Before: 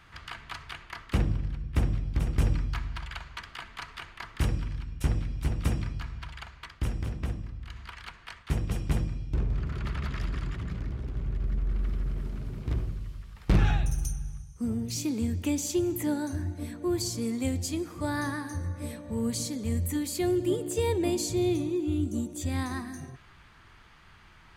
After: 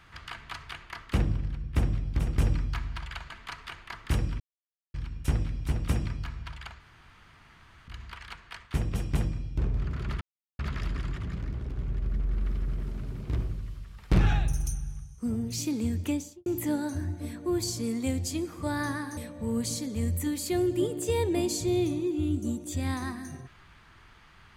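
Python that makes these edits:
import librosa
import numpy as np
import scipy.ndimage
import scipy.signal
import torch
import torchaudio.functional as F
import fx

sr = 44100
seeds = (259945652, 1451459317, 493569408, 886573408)

y = fx.studio_fade_out(x, sr, start_s=15.42, length_s=0.42)
y = fx.edit(y, sr, fx.cut(start_s=3.3, length_s=0.3),
    fx.insert_silence(at_s=4.7, length_s=0.54),
    fx.room_tone_fill(start_s=6.56, length_s=1.08),
    fx.insert_silence(at_s=9.97, length_s=0.38),
    fx.cut(start_s=18.55, length_s=0.31), tone=tone)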